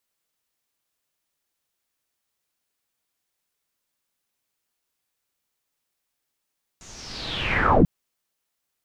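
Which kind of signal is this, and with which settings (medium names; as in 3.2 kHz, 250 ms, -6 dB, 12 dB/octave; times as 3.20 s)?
swept filtered noise pink, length 1.04 s lowpass, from 6.9 kHz, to 120 Hz, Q 5.8, linear, gain ramp +32.5 dB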